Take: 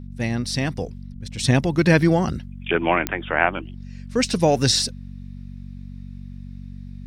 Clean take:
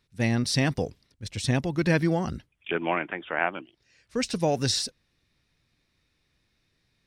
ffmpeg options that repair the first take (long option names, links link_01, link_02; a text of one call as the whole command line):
ffmpeg -i in.wav -filter_complex "[0:a]adeclick=threshold=4,bandreject=frequency=47.3:width_type=h:width=4,bandreject=frequency=94.6:width_type=h:width=4,bandreject=frequency=141.9:width_type=h:width=4,bandreject=frequency=189.2:width_type=h:width=4,bandreject=frequency=236.5:width_type=h:width=4,asplit=3[link_01][link_02][link_03];[link_01]afade=type=out:start_time=1.1:duration=0.02[link_04];[link_02]highpass=frequency=140:width=0.5412,highpass=frequency=140:width=1.3066,afade=type=in:start_time=1.1:duration=0.02,afade=type=out:start_time=1.22:duration=0.02[link_05];[link_03]afade=type=in:start_time=1.22:duration=0.02[link_06];[link_04][link_05][link_06]amix=inputs=3:normalize=0,asetnsamples=nb_out_samples=441:pad=0,asendcmd='1.39 volume volume -7dB',volume=0dB" out.wav